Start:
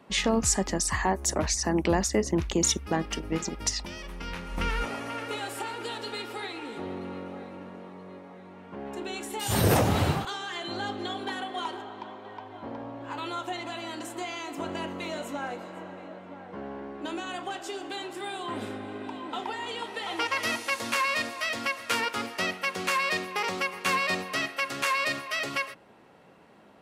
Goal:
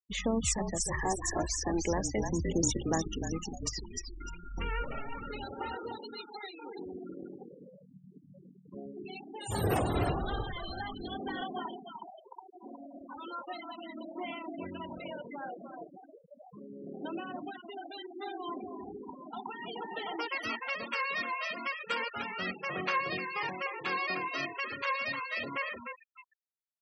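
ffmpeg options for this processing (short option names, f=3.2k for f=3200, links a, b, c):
-filter_complex "[0:a]asplit=6[a][b][c][d][e][f];[b]adelay=301,afreqshift=-39,volume=-5dB[g];[c]adelay=602,afreqshift=-78,volume=-13.2dB[h];[d]adelay=903,afreqshift=-117,volume=-21.4dB[i];[e]adelay=1204,afreqshift=-156,volume=-29.5dB[j];[f]adelay=1505,afreqshift=-195,volume=-37.7dB[k];[a][g][h][i][j][k]amix=inputs=6:normalize=0,aphaser=in_gain=1:out_gain=1:delay=2.9:decay=0.34:speed=0.35:type=sinusoidal,afftfilt=real='re*gte(hypot(re,im),0.0501)':imag='im*gte(hypot(re,im),0.0501)':win_size=1024:overlap=0.75,volume=-7dB"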